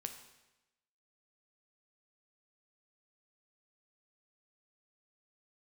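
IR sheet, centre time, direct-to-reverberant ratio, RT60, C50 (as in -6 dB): 18 ms, 6.0 dB, 1.0 s, 9.0 dB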